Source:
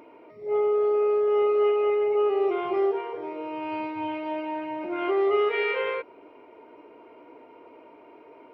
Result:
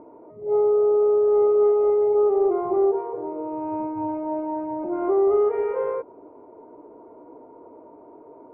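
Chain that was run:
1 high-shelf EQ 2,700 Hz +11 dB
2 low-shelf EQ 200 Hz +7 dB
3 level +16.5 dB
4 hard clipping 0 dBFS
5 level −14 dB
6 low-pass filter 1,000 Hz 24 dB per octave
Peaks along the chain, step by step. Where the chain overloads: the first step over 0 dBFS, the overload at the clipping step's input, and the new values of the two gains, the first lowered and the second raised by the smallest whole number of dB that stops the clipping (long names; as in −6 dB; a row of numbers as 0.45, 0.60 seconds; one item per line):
−13.0, −12.0, +4.5, 0.0, −14.0, −13.0 dBFS
step 3, 4.5 dB
step 3 +11.5 dB, step 5 −9 dB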